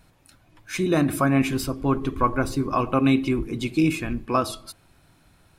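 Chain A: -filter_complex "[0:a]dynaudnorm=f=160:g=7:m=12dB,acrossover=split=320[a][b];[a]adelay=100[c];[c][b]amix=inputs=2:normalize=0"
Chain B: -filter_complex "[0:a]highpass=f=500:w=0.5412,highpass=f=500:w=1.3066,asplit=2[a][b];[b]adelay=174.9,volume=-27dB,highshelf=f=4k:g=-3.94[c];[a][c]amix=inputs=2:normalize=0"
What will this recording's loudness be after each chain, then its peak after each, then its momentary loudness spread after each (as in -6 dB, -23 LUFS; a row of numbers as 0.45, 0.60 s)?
-18.0, -29.0 LUFS; -1.5, -9.0 dBFS; 6, 10 LU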